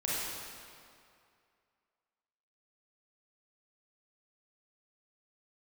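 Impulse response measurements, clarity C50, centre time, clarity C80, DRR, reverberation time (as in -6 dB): -4.5 dB, 0.153 s, -1.5 dB, -7.5 dB, 2.4 s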